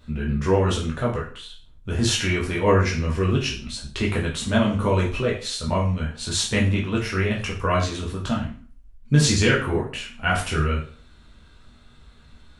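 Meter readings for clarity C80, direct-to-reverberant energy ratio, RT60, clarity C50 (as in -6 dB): 12.0 dB, -4.0 dB, 0.40 s, 7.5 dB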